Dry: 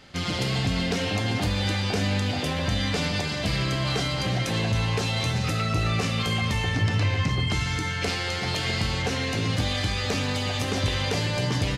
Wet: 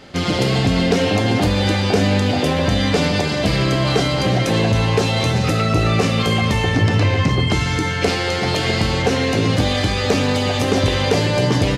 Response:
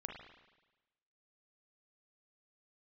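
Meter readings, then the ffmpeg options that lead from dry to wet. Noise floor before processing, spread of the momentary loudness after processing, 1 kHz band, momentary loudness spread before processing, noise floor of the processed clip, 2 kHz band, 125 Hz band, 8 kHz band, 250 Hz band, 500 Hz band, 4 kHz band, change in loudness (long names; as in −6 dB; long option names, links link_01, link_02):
−29 dBFS, 2 LU, +9.0 dB, 2 LU, −21 dBFS, +6.5 dB, +7.5 dB, +5.5 dB, +10.5 dB, +12.5 dB, +6.0 dB, +8.0 dB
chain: -af "equalizer=frequency=410:width_type=o:width=2.3:gain=7.5,volume=5.5dB"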